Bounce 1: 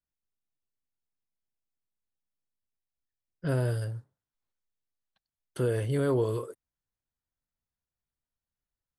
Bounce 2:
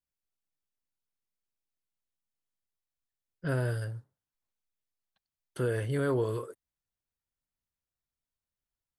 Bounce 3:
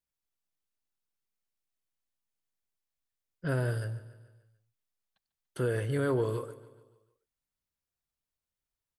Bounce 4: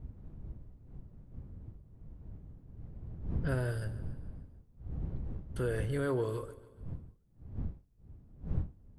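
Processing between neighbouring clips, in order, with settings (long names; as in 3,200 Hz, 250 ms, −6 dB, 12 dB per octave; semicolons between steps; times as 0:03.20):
dynamic equaliser 1,600 Hz, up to +6 dB, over −53 dBFS, Q 1.7; level −2.5 dB
repeating echo 145 ms, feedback 52%, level −17 dB
wind on the microphone 96 Hz −38 dBFS; level −3.5 dB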